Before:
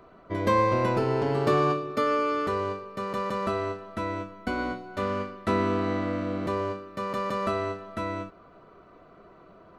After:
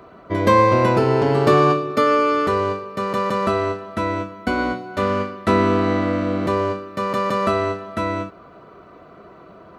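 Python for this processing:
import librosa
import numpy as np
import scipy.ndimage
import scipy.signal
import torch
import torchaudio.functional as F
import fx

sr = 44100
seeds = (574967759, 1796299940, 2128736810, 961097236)

y = scipy.signal.sosfilt(scipy.signal.butter(2, 51.0, 'highpass', fs=sr, output='sos'), x)
y = y * 10.0 ** (8.5 / 20.0)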